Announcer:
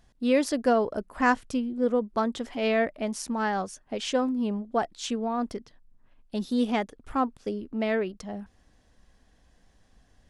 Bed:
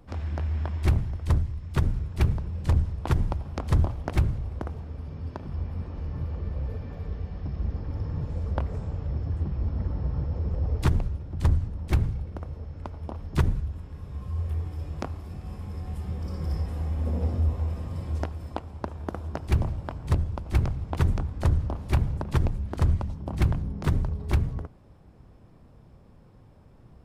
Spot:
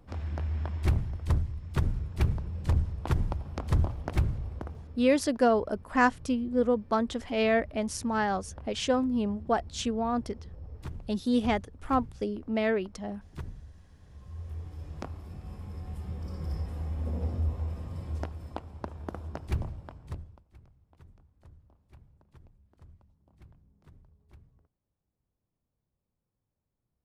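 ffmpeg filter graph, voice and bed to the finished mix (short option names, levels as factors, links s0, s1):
-filter_complex "[0:a]adelay=4750,volume=0.944[s0];[1:a]volume=2.66,afade=t=out:st=4.43:d=0.82:silence=0.211349,afade=t=in:st=13.99:d=1.24:silence=0.251189,afade=t=out:st=19.25:d=1.22:silence=0.0446684[s1];[s0][s1]amix=inputs=2:normalize=0"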